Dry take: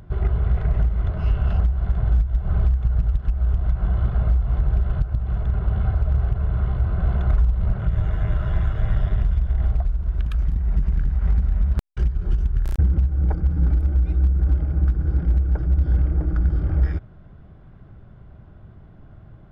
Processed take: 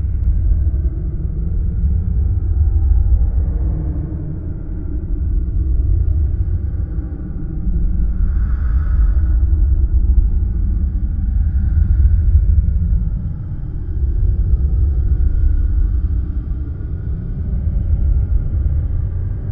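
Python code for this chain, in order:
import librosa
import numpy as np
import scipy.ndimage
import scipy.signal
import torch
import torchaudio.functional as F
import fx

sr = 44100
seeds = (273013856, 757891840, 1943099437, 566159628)

p1 = fx.paulstretch(x, sr, seeds[0], factor=33.0, window_s=0.05, from_s=16.1)
p2 = fx.low_shelf(p1, sr, hz=210.0, db=10.0)
p3 = p2 + fx.echo_single(p2, sr, ms=241, db=-6.5, dry=0)
y = F.gain(torch.from_numpy(p3), -6.0).numpy()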